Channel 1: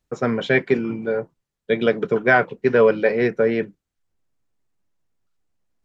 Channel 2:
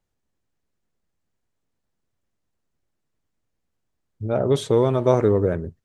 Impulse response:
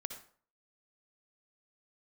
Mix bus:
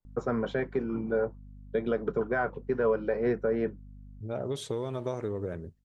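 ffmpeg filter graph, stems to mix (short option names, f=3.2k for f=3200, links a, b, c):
-filter_complex "[0:a]alimiter=limit=-15dB:level=0:latency=1:release=301,aeval=exprs='val(0)+0.00708*(sin(2*PI*50*n/s)+sin(2*PI*2*50*n/s)/2+sin(2*PI*3*50*n/s)/3+sin(2*PI*4*50*n/s)/4+sin(2*PI*5*50*n/s)/5)':c=same,highshelf=f=1.7k:t=q:w=1.5:g=-8.5,adelay=50,volume=-3.5dB[a];[1:a]acompressor=threshold=-18dB:ratio=6,adynamicequalizer=threshold=0.00631:dfrequency=2100:dqfactor=0.7:tfrequency=2100:tqfactor=0.7:attack=5:release=100:ratio=0.375:range=2.5:mode=boostabove:tftype=highshelf,volume=-10.5dB,asplit=2[b][c];[c]apad=whole_len=260034[d];[a][d]sidechaincompress=threshold=-56dB:ratio=8:attack=16:release=1480[e];[e][b]amix=inputs=2:normalize=0"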